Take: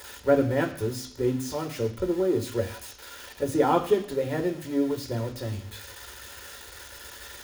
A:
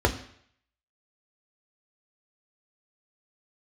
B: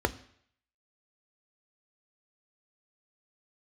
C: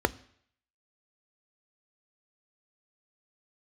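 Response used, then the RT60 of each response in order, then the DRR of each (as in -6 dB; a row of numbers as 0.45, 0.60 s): A; 0.65, 0.65, 0.65 s; 3.0, 9.5, 13.5 dB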